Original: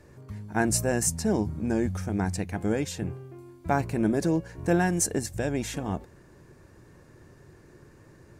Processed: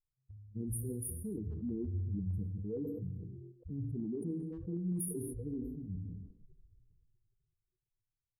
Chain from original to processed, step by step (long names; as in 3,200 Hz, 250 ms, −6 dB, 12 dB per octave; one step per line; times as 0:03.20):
spectral dynamics exaggerated over time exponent 3
low-pass that shuts in the quiet parts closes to 1,300 Hz, open at −29.5 dBFS
brick-wall band-stop 500–9,300 Hz
far-end echo of a speakerphone 220 ms, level −30 dB
downward compressor, threshold −32 dBFS, peak gain reduction 10 dB
brickwall limiter −36 dBFS, peak gain reduction 10.5 dB
shaped tremolo saw up 6.5 Hz, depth 35%
tape wow and flutter 16 cents
reverb whose tail is shaped and stops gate 300 ms falling, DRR 8.5 dB
level that may fall only so fast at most 28 dB per second
level +5 dB